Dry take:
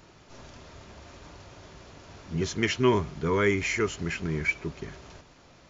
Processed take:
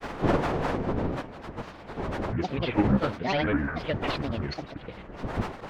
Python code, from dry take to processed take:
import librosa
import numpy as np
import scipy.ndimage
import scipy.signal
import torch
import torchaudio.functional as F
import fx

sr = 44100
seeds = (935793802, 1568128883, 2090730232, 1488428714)

y = fx.cvsd(x, sr, bps=16000)
y = fx.dmg_wind(y, sr, seeds[0], corner_hz=630.0, level_db=-31.0)
y = fx.granulator(y, sr, seeds[1], grain_ms=100.0, per_s=20.0, spray_ms=100.0, spread_st=12)